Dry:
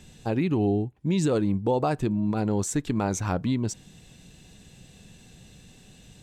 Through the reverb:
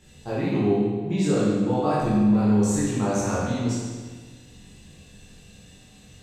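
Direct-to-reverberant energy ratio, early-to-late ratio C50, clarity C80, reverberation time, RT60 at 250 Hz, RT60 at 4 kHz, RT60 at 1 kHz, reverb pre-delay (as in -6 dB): -10.0 dB, -2.0 dB, 0.5 dB, 1.5 s, 1.5 s, 1.4 s, 1.5 s, 14 ms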